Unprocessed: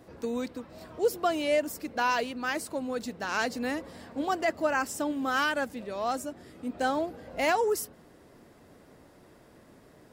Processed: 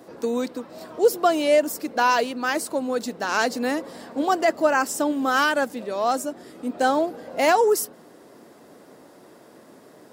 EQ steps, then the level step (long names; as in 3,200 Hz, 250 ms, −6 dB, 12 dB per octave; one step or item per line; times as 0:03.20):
high-pass filter 230 Hz 12 dB per octave
parametric band 2,300 Hz −4.5 dB 1.2 octaves
+8.5 dB